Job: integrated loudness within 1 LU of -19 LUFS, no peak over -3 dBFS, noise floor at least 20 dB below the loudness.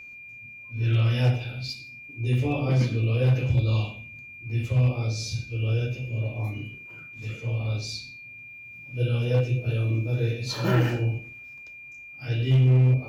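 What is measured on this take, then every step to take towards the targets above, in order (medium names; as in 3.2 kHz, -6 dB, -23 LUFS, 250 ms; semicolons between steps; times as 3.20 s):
clipped samples 1.0%; clipping level -15.0 dBFS; steady tone 2.4 kHz; tone level -41 dBFS; loudness -25.5 LUFS; peak level -15.0 dBFS; loudness target -19.0 LUFS
-> clip repair -15 dBFS; band-stop 2.4 kHz, Q 30; trim +6.5 dB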